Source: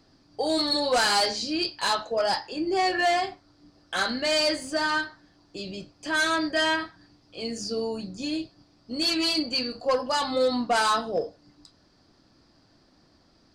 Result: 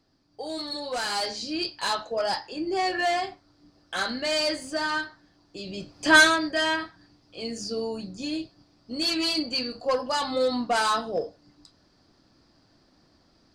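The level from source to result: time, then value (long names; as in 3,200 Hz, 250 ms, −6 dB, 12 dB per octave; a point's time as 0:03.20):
0:00.87 −8.5 dB
0:01.58 −2 dB
0:05.62 −2 dB
0:06.16 +11 dB
0:06.39 −1 dB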